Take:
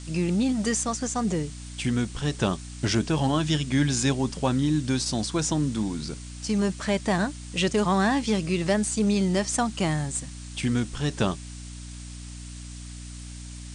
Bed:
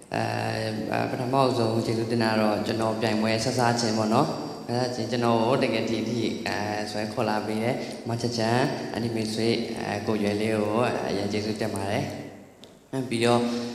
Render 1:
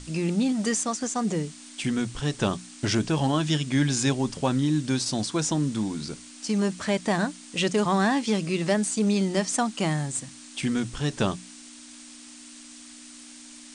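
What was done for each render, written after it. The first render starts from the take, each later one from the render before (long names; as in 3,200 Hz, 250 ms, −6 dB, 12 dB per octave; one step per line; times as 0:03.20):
mains-hum notches 60/120/180 Hz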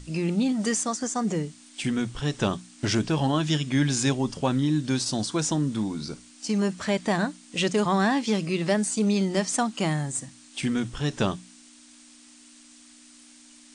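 noise reduction from a noise print 6 dB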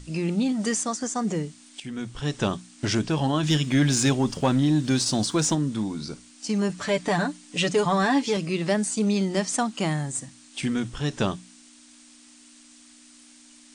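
0:01.80–0:02.30: fade in, from −13.5 dB
0:03.43–0:05.55: leveller curve on the samples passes 1
0:06.69–0:08.37: comb filter 6.9 ms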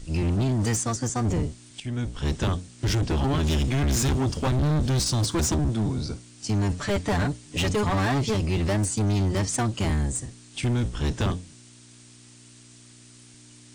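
sub-octave generator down 1 octave, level +4 dB
hard clipping −20.5 dBFS, distortion −8 dB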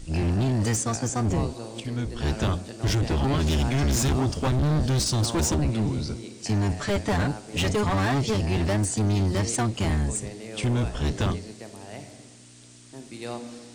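mix in bed −13.5 dB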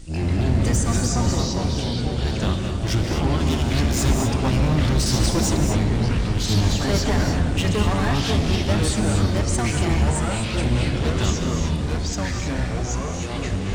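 reverb whose tail is shaped and stops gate 270 ms rising, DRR 4 dB
delay with pitch and tempo change per echo 105 ms, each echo −4 semitones, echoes 3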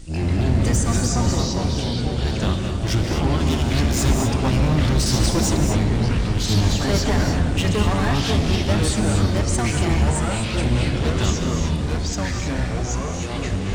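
level +1 dB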